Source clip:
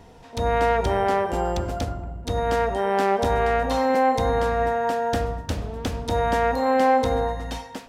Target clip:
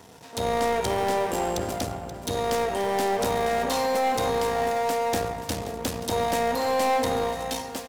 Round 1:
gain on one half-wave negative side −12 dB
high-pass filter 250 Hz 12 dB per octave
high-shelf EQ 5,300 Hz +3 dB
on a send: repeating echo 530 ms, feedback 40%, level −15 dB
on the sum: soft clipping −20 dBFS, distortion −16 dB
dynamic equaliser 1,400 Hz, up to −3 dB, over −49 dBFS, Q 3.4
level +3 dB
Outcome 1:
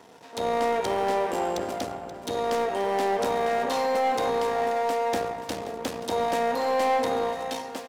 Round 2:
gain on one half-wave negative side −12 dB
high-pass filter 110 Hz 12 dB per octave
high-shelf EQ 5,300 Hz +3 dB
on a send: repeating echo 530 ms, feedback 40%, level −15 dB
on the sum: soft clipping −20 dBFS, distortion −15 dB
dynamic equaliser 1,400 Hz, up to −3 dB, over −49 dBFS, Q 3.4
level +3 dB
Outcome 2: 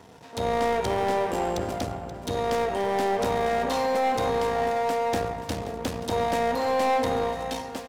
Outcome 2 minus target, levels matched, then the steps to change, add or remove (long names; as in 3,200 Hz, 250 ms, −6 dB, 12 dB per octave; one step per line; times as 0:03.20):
8,000 Hz band −6.0 dB
change: high-shelf EQ 5,300 Hz +13.5 dB